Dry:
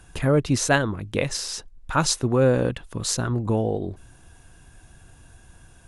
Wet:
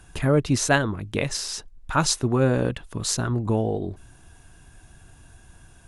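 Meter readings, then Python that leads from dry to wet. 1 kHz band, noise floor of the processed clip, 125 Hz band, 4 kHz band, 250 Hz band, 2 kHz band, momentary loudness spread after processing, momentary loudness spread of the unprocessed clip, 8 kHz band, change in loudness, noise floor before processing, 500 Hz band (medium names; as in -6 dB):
0.0 dB, -52 dBFS, 0.0 dB, 0.0 dB, 0.0 dB, 0.0 dB, 9 LU, 10 LU, 0.0 dB, -0.5 dB, -52 dBFS, -2.0 dB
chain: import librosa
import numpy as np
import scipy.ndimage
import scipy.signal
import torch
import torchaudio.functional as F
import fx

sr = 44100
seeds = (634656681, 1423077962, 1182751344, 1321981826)

y = fx.notch(x, sr, hz=510.0, q=12.0)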